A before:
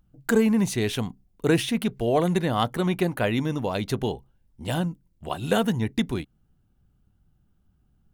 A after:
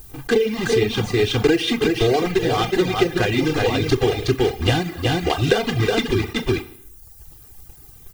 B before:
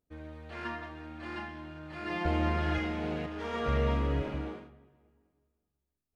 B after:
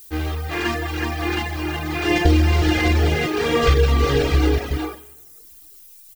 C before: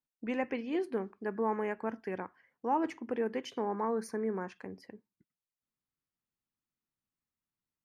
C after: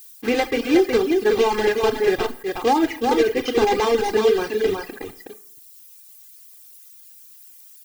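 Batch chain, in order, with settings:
one scale factor per block 3 bits
low-pass filter 4,400 Hz 12 dB per octave
on a send: single-tap delay 368 ms −5.5 dB
on the sum: four-comb reverb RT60 0.69 s, combs from 26 ms, DRR 5.5 dB
downward compressor 16 to 1, threshold −28 dBFS
background noise violet −62 dBFS
reverb reduction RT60 0.89 s
comb filter 2.5 ms, depth 68%
dynamic equaliser 990 Hz, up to −6 dB, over −46 dBFS, Q 1.1
level that may rise only so fast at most 480 dB per second
loudness normalisation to −20 LKFS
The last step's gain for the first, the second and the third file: +15.5, +17.5, +16.5 decibels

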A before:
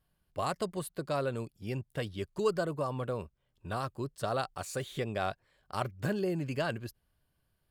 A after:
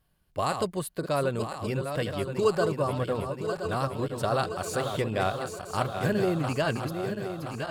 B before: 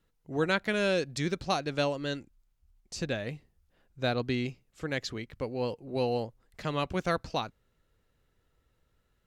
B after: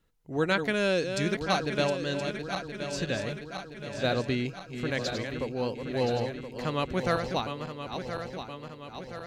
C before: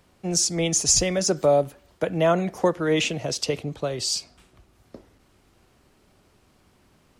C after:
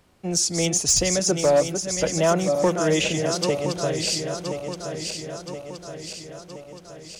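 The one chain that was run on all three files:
feedback delay that plays each chunk backwards 511 ms, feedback 74%, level −7 dB
gain into a clipping stage and back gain 12 dB
normalise the peak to −12 dBFS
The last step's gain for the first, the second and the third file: +5.0, +1.0, 0.0 decibels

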